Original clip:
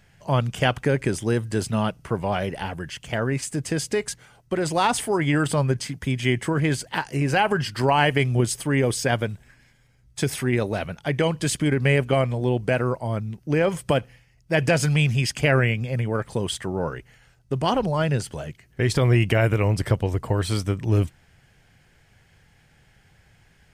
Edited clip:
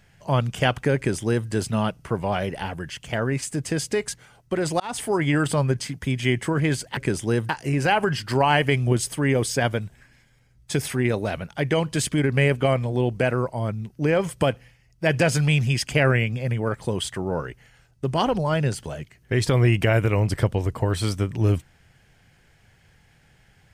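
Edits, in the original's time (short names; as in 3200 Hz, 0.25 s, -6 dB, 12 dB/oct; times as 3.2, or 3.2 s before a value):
0.96–1.48 copy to 6.97
4.8–5.08 fade in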